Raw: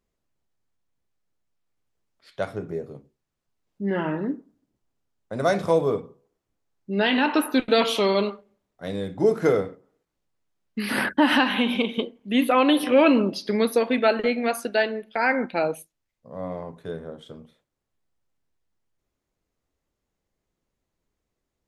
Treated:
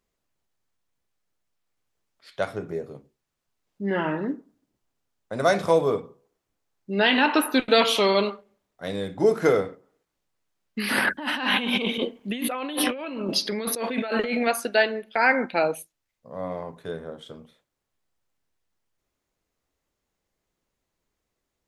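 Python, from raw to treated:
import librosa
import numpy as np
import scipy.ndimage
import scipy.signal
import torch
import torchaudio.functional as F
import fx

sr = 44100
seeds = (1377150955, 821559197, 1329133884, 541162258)

y = fx.over_compress(x, sr, threshold_db=-28.0, ratio=-1.0, at=(10.99, 14.47))
y = fx.low_shelf(y, sr, hz=490.0, db=-6.0)
y = y * 10.0 ** (3.5 / 20.0)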